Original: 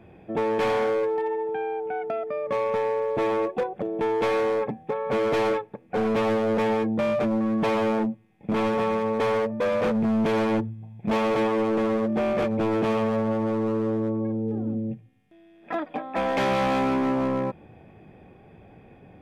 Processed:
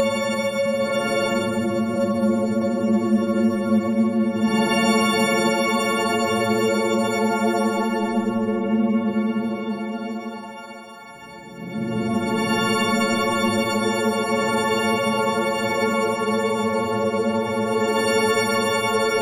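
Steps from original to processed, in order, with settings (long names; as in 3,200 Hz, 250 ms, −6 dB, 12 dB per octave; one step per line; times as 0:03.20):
every partial snapped to a pitch grid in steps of 4 semitones
high-shelf EQ 5,200 Hz +7.5 dB
extreme stretch with random phases 8.5×, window 0.10 s, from 0:07.08
downward compressor 2 to 1, threshold −33 dBFS, peak gain reduction 9.5 dB
echo through a band-pass that steps 654 ms, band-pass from 180 Hz, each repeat 0.7 octaves, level −0.5 dB
on a send at −23 dB: convolution reverb RT60 3.5 s, pre-delay 5 ms
on the sum: level +8 dB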